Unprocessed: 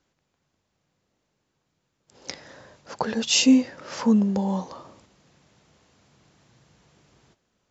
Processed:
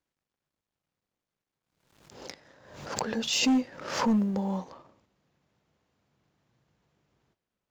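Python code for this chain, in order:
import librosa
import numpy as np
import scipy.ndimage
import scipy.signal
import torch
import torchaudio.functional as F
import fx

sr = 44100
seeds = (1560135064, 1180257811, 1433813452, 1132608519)

y = fx.law_mismatch(x, sr, coded='A')
y = fx.high_shelf(y, sr, hz=5300.0, db=fx.steps((0.0, -6.5), (4.7, -12.0)))
y = np.clip(y, -10.0 ** (-15.5 / 20.0), 10.0 ** (-15.5 / 20.0))
y = fx.pre_swell(y, sr, db_per_s=72.0)
y = y * 10.0 ** (-4.5 / 20.0)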